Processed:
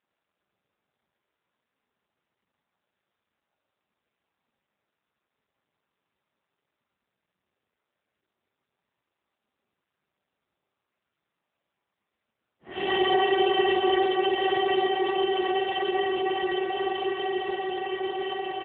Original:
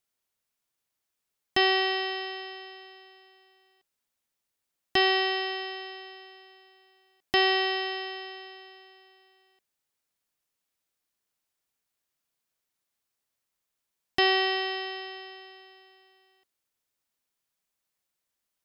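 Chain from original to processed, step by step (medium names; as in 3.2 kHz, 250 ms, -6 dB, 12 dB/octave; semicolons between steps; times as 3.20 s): comb 5 ms, depth 44%; Paulstretch 12×, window 0.05 s, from 3.88 s; level-controlled noise filter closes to 1.4 kHz, open at -23.5 dBFS; AMR-NB 7.4 kbps 8 kHz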